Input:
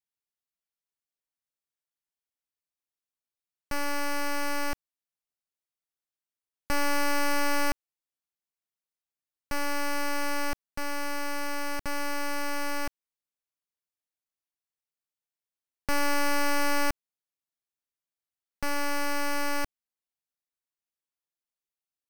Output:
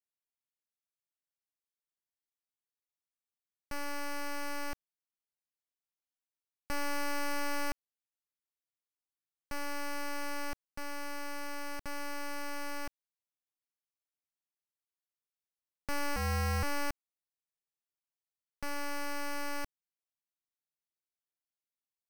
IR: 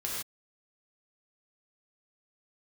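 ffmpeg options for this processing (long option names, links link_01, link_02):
-filter_complex "[0:a]asettb=1/sr,asplit=3[link_01][link_02][link_03];[link_01]atrim=end=16.164[link_04];[link_02]atrim=start=16.16:end=16.63,asetpts=PTS-STARTPTS,afade=type=in:duration=0.004:curve=qsin,afade=type=out:start_time=0.466:duration=0.004:curve=qsin,afreqshift=-83[link_05];[link_03]atrim=start=16.626[link_06];[link_04][link_05]acrossfade=duration=0.004:curve1=hsin:curve2=qsin[link_07];[link_07][link_06]acrossfade=duration=0.004:curve1=qsin:curve2=hsin,volume=-8dB"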